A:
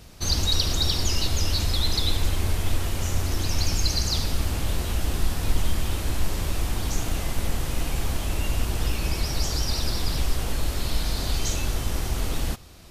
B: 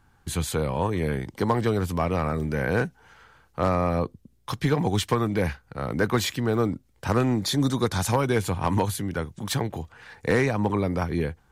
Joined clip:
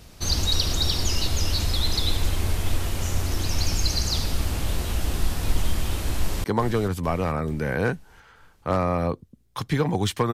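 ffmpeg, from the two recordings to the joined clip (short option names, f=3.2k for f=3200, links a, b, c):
-filter_complex "[0:a]apad=whole_dur=10.33,atrim=end=10.33,atrim=end=6.442[a];[1:a]atrim=start=1.358:end=5.25[b];[a][b]acrossfade=d=0.004:c1=hsin:c2=hsin,asplit=2[c][d];[d]afade=t=in:st=6.15:d=0.01,afade=t=out:st=6.44:d=0.01,aecho=0:1:440|880|1320|1760|2200:0.298538|0.149269|0.0746346|0.0373173|0.0186586[e];[c][e]amix=inputs=2:normalize=0"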